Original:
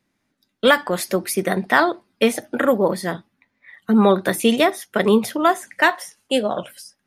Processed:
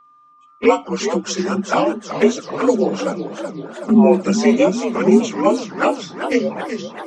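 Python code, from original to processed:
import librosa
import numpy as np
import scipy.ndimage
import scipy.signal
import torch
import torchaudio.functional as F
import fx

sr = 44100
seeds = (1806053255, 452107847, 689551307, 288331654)

y = fx.partial_stretch(x, sr, pct=85)
y = fx.env_flanger(y, sr, rest_ms=7.1, full_db=-15.5)
y = y + 10.0 ** (-53.0 / 20.0) * np.sin(2.0 * np.pi * 1200.0 * np.arange(len(y)) / sr)
y = fx.echo_warbled(y, sr, ms=383, feedback_pct=63, rate_hz=2.8, cents=204, wet_db=-9.5)
y = y * librosa.db_to_amplitude(5.0)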